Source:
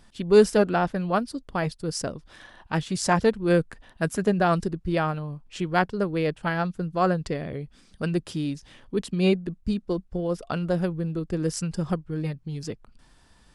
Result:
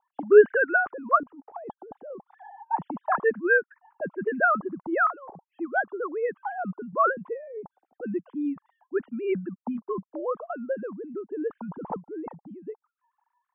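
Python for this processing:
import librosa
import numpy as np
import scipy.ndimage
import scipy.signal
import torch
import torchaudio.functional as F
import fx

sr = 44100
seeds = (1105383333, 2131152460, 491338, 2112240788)

y = fx.sine_speech(x, sr)
y = fx.over_compress(y, sr, threshold_db=-40.0, ratio=-1.0, at=(1.23, 2.73))
y = fx.envelope_lowpass(y, sr, base_hz=730.0, top_hz=1600.0, q=7.6, full_db=-19.5, direction='up')
y = F.gain(torch.from_numpy(y), -4.0).numpy()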